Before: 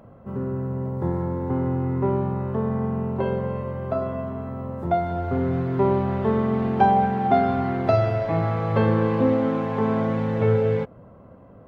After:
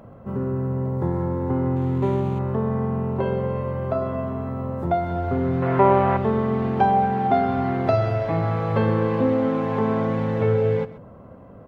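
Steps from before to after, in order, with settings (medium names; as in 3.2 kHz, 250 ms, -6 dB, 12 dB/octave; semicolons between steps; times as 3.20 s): 1.76–2.39 s: median filter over 25 samples; in parallel at +1.5 dB: compression, threshold -26 dBFS, peak gain reduction 13 dB; 5.62–6.17 s: on the sum: high-order bell 1.2 kHz +10 dB 2.8 oct; on a send: delay 130 ms -16.5 dB; 8.55–9.44 s: on the sum: short-mantissa float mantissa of 8-bit; trim -3.5 dB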